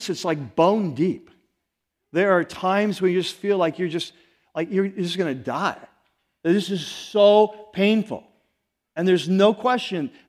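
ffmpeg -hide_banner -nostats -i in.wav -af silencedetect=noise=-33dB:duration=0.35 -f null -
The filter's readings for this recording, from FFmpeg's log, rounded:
silence_start: 1.17
silence_end: 2.14 | silence_duration: 0.97
silence_start: 4.09
silence_end: 4.55 | silence_duration: 0.47
silence_start: 5.84
silence_end: 6.45 | silence_duration: 0.60
silence_start: 8.19
silence_end: 8.97 | silence_duration: 0.78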